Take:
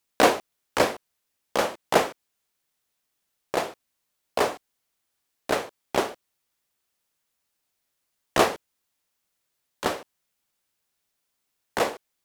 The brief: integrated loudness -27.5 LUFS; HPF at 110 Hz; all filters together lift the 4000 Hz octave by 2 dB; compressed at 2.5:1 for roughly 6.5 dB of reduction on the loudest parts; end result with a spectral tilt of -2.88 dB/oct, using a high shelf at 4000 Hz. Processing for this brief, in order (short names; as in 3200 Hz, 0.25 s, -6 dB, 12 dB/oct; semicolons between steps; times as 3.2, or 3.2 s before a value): HPF 110 Hz; high shelf 4000 Hz -5 dB; bell 4000 Hz +5.5 dB; compressor 2.5:1, threshold -23 dBFS; gain +3.5 dB